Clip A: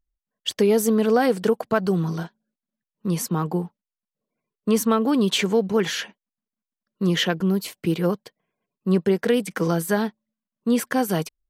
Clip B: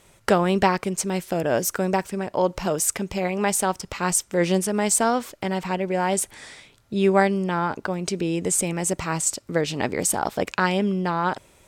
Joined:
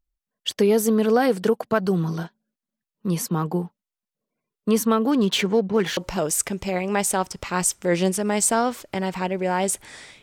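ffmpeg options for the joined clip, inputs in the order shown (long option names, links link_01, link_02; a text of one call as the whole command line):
ffmpeg -i cue0.wav -i cue1.wav -filter_complex "[0:a]asettb=1/sr,asplit=3[link_01][link_02][link_03];[link_01]atrim=end=5.114[link_04];[link_02]atrim=start=5.11:end=5.97,asetpts=PTS-STARTPTS,afade=type=in:duration=0.004:curve=qsin,afade=type=out:start_time=0.856:duration=0.004:curve=qsin,adynamicsmooth=sensitivity=7:basefreq=2400[link_05];[link_03]atrim=start=5.966[link_06];[link_04][link_05]acrossfade=duration=0.004:curve1=hsin:curve2=qsin[link_07];[link_07][link_06]acrossfade=duration=0.004:curve1=qsin:curve2=hsin,apad=whole_dur=10.22,atrim=end=10.22,atrim=end=5.972[link_08];[1:a]atrim=start=2.458:end=6.71[link_09];[link_08][link_09]acrossfade=duration=0.004:curve1=hsin:curve2=hsin" out.wav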